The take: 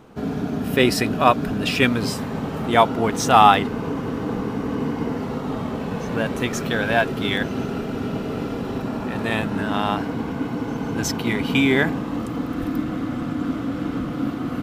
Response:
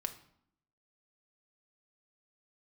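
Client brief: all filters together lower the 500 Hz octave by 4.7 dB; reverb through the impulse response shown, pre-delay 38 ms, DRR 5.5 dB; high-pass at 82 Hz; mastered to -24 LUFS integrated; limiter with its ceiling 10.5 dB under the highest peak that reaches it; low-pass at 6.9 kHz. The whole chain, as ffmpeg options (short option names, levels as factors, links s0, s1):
-filter_complex "[0:a]highpass=82,lowpass=6900,equalizer=f=500:t=o:g=-6.5,alimiter=limit=0.237:level=0:latency=1,asplit=2[s0][s1];[1:a]atrim=start_sample=2205,adelay=38[s2];[s1][s2]afir=irnorm=-1:irlink=0,volume=0.531[s3];[s0][s3]amix=inputs=2:normalize=0,volume=1.12"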